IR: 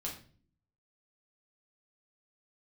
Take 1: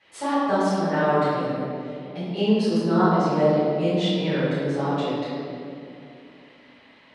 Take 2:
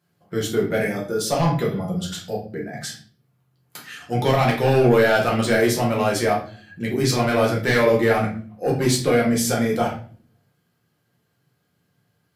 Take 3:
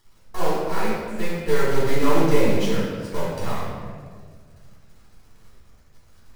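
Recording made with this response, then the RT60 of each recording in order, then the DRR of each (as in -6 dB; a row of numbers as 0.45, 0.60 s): 2; 2.6, 0.45, 1.8 s; -15.0, -2.5, -10.5 dB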